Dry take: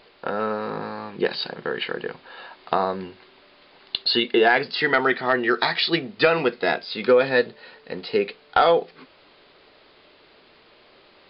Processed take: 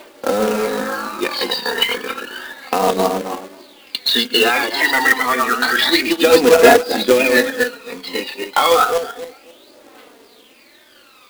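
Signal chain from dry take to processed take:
feedback delay that plays each chunk backwards 134 ms, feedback 45%, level −2.5 dB
high-pass filter 240 Hz 24 dB per octave
in parallel at +2 dB: speech leveller within 4 dB 2 s
on the sum: phase shifter 0.3 Hz, delay 1.1 ms, feedback 66%
bit reduction 9 bits
flanger 0.83 Hz, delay 3.2 ms, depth 1.2 ms, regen +4%
log-companded quantiser 4 bits
level −1 dB

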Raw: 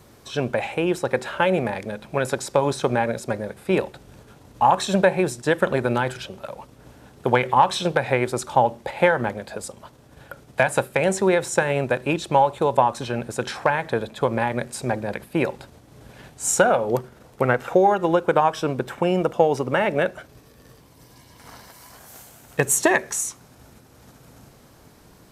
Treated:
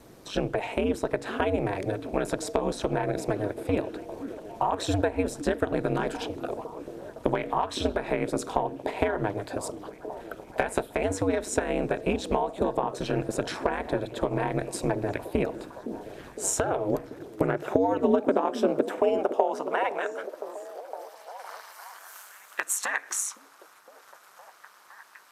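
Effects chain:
octave-band graphic EQ 125/250/500 Hz −10/+5/+3 dB
downward compressor 6 to 1, threshold −21 dBFS, peak gain reduction 12.5 dB
high-pass filter sweep 140 Hz → 1,200 Hz, 0:16.84–0:20.43
ring modulation 100 Hz
echo through a band-pass that steps 512 ms, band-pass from 270 Hz, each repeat 0.7 octaves, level −8 dB

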